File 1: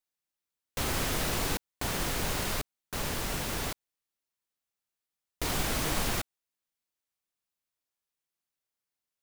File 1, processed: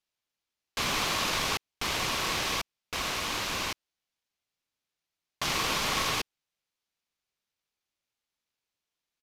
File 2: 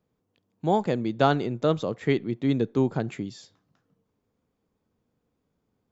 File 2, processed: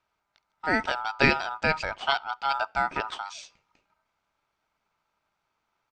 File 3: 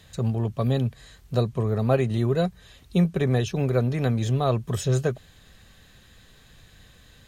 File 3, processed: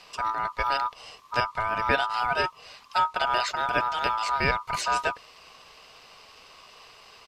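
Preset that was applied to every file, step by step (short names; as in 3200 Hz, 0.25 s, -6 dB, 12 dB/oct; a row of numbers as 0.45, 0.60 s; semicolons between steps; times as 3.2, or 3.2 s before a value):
band shelf 2400 Hz +10 dB 2.8 oct; ring modulator 1100 Hz; downsampling 32000 Hz; gain -1 dB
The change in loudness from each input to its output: +2.5, -1.0, -1.5 LU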